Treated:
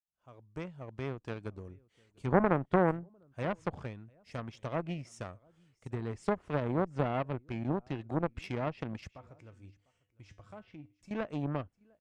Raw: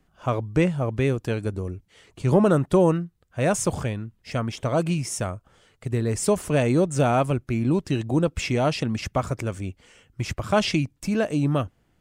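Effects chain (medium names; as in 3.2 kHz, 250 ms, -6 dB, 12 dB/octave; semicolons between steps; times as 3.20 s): fade-in on the opening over 1.39 s; low-pass that closes with the level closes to 1.2 kHz, closed at -17 dBFS; in parallel at 0 dB: peak limiter -18 dBFS, peak gain reduction 10.5 dB; 9.11–11.11 s: on the sum: feedback comb 100 Hz, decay 0.37 s, harmonics odd, mix 70%; on a send: delay 700 ms -22.5 dB; on the sum: Chebyshev shaper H 3 -10 dB, 5 -36 dB, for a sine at -5 dBFS; trim -6.5 dB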